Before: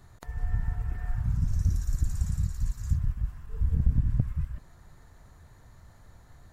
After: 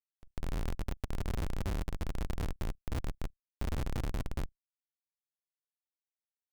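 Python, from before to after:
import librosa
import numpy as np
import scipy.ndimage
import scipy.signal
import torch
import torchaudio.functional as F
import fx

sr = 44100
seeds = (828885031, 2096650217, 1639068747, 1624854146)

y = fx.wiener(x, sr, points=15)
y = fx.schmitt(y, sr, flips_db=-26.5)
y = fx.level_steps(y, sr, step_db=17)
y = y * librosa.db_to_amplitude(1.5)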